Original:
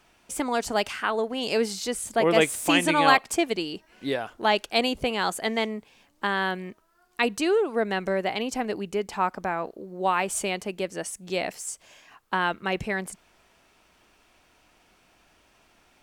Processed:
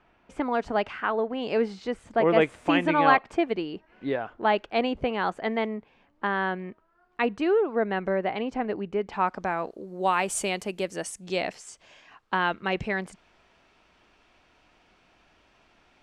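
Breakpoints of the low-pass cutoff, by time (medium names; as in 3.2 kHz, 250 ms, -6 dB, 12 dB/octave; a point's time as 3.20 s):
8.98 s 2 kHz
9.33 s 4.9 kHz
9.98 s 12 kHz
10.95 s 12 kHz
11.63 s 4.5 kHz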